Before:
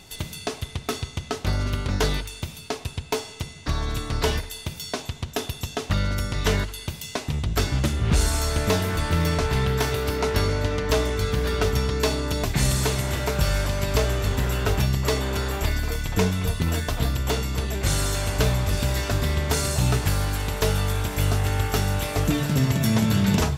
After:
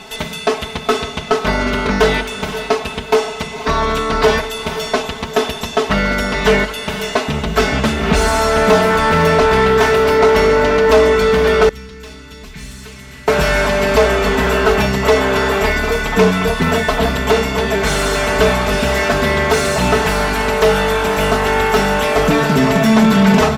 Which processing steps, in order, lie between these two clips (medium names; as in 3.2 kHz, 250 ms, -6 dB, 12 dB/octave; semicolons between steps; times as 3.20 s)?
comb 4.6 ms, depth 98%; echo that smears into a reverb 510 ms, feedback 41%, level -14.5 dB; overdrive pedal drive 20 dB, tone 1.2 kHz, clips at -4.5 dBFS; 11.69–13.28 s: amplifier tone stack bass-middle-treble 6-0-2; trim +4.5 dB